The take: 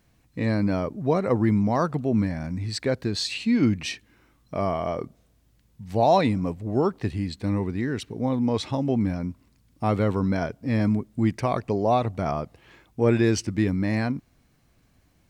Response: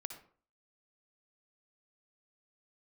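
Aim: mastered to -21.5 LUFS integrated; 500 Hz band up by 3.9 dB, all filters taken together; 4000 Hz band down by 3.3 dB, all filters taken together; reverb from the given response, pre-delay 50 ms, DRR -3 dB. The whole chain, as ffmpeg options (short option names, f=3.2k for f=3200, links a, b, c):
-filter_complex "[0:a]equalizer=f=500:t=o:g=5,equalizer=f=4k:t=o:g=-4,asplit=2[a][b];[1:a]atrim=start_sample=2205,adelay=50[c];[b][c]afir=irnorm=-1:irlink=0,volume=5.5dB[d];[a][d]amix=inputs=2:normalize=0,volume=-2.5dB"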